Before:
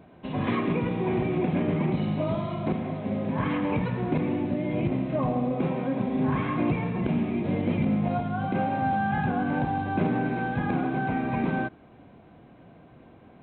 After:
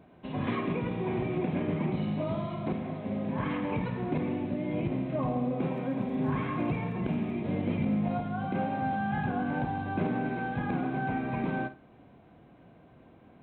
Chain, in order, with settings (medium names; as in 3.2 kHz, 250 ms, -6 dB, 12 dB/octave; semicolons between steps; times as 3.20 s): on a send: flutter echo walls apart 9.1 m, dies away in 0.25 s; 5.70–7.33 s: on the sum: crackle 47 per s -51 dBFS; trim -4.5 dB